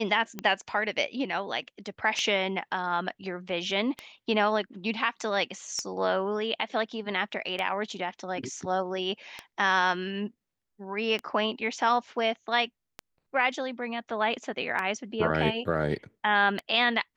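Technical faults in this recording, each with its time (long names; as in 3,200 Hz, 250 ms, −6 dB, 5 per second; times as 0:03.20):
scratch tick 33 1/3 rpm −18 dBFS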